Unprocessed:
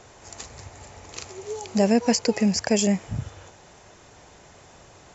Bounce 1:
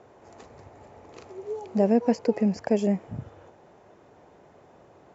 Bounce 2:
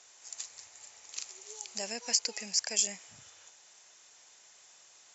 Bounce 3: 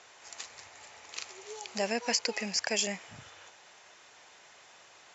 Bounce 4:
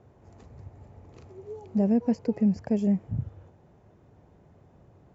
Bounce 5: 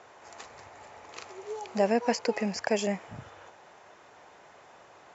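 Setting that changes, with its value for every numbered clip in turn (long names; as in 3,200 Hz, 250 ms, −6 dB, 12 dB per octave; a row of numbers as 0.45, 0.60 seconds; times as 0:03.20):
resonant band-pass, frequency: 390, 8,000, 2,800, 130, 1,100 Hertz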